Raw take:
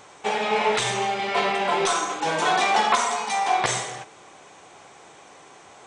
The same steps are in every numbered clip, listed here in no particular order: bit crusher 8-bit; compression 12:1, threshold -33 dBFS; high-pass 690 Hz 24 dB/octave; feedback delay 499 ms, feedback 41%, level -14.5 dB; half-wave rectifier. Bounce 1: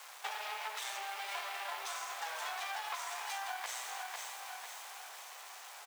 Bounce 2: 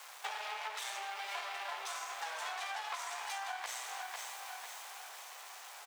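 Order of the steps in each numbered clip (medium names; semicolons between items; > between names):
half-wave rectifier > feedback delay > compression > bit crusher > high-pass; half-wave rectifier > feedback delay > bit crusher > compression > high-pass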